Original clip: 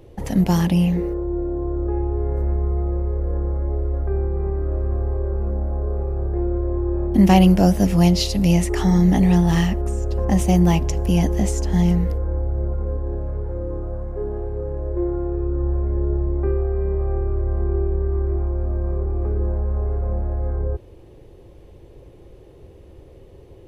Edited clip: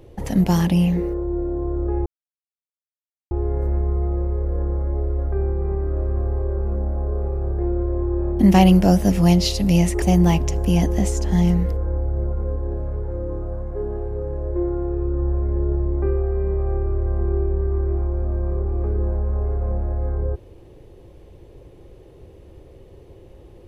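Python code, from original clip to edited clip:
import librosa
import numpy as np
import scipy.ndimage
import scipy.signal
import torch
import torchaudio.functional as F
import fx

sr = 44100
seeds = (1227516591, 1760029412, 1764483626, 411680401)

y = fx.edit(x, sr, fx.insert_silence(at_s=2.06, length_s=1.25),
    fx.cut(start_s=8.77, length_s=1.66), tone=tone)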